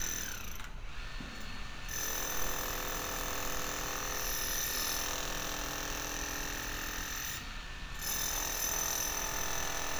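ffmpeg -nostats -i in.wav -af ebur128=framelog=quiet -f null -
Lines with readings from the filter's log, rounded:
Integrated loudness:
  I:         -35.4 LUFS
  Threshold: -45.5 LUFS
Loudness range:
  LRA:         2.8 LU
  Threshold: -55.5 LUFS
  LRA low:   -37.3 LUFS
  LRA high:  -34.5 LUFS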